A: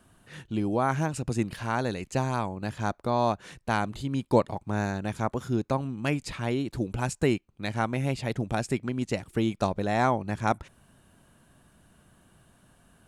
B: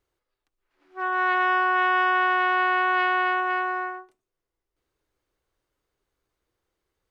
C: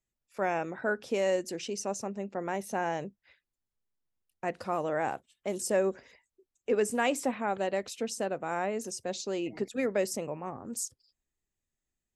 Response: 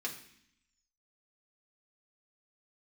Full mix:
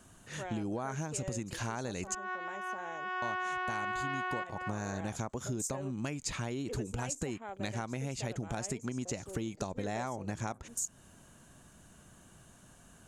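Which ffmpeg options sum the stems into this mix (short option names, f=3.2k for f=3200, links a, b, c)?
-filter_complex "[0:a]acompressor=threshold=-29dB:ratio=6,volume=1dB,asplit=3[a][b][c];[a]atrim=end=2.15,asetpts=PTS-STARTPTS,afade=t=out:st=2.146:d=0.004:c=hsin[d];[b]atrim=start=2.15:end=3.22,asetpts=PTS-STARTPTS,volume=0[e];[c]atrim=start=3.22,asetpts=PTS-STARTPTS,afade=t=in:d=0.004:c=hsin[f];[d][e][f]concat=n=3:v=0:a=1[g];[1:a]acompressor=threshold=-31dB:ratio=2,adelay=1100,volume=3dB[h];[2:a]afwtdn=0.00891,bass=f=250:g=-5,treble=f=4k:g=10,volume=-12dB,asplit=2[i][j];[j]apad=whole_len=361685[k];[h][k]sidechaincompress=threshold=-58dB:ratio=8:attack=24:release=265[l];[g][l][i]amix=inputs=3:normalize=0,equalizer=f=6.7k:w=2.6:g=12.5,acompressor=threshold=-33dB:ratio=4"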